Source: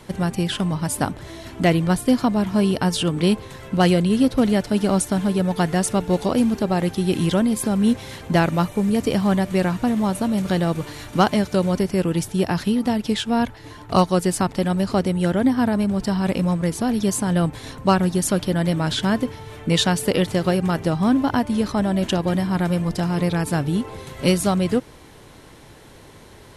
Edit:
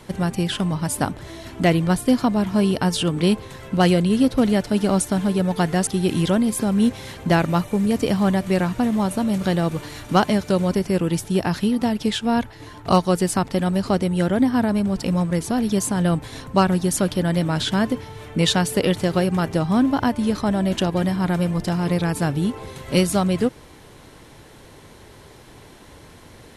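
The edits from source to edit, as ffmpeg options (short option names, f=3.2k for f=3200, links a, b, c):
-filter_complex "[0:a]asplit=3[a][b][c];[a]atrim=end=5.872[d];[b]atrim=start=6.908:end=16.072[e];[c]atrim=start=16.338[f];[d][e]acrossfade=d=0.004:c1=hsin:c2=hsin[g];[g][f]acrossfade=d=0.004:c1=hsin:c2=hsin"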